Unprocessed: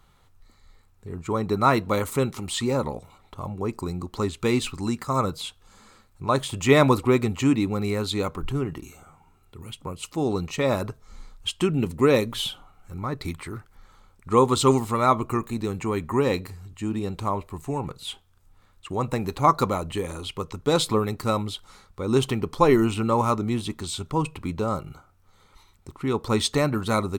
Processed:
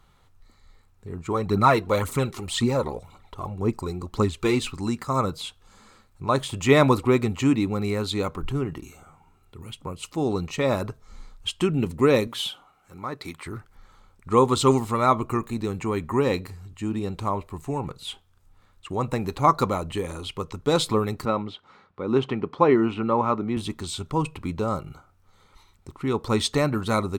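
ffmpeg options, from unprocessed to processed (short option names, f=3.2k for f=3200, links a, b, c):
-filter_complex "[0:a]asplit=3[a][b][c];[a]afade=t=out:st=1.31:d=0.02[d];[b]aphaser=in_gain=1:out_gain=1:delay=3:decay=0.5:speed=1.9:type=triangular,afade=t=in:st=1.31:d=0.02,afade=t=out:st=4.55:d=0.02[e];[c]afade=t=in:st=4.55:d=0.02[f];[d][e][f]amix=inputs=3:normalize=0,asettb=1/sr,asplit=3[g][h][i];[g]atrim=end=12.274[j];[h]atrim=start=12.27:end=13.46,asetpts=PTS-STARTPTS,afade=t=in:d=0.004:c=qsin,afade=t=out:st=1.186:d=0.004:c=qsin,highpass=f=370:p=1[k];[i]atrim=start=13.456[l];[j][k]acrossfade=d=0.004:c1=hsin:c2=qsin[m];[m][l]acrossfade=d=0.004:c1=qsin:c2=hsin,asettb=1/sr,asplit=3[n][o][p];[n]atrim=end=21.254[q];[o]atrim=start=21.25:end=23.57,asetpts=PTS-STARTPTS,afade=t=in:d=0.004:c=qsin,afade=t=out:st=2.316:d=0.004:c=qsin,highpass=150,lowpass=2.6k[r];[p]atrim=start=23.566[s];[q][r]acrossfade=d=0.004:c1=hsin:c2=qsin[t];[t][s]acrossfade=d=0.004:c1=qsin:c2=hsin,highshelf=f=8.5k:g=-4"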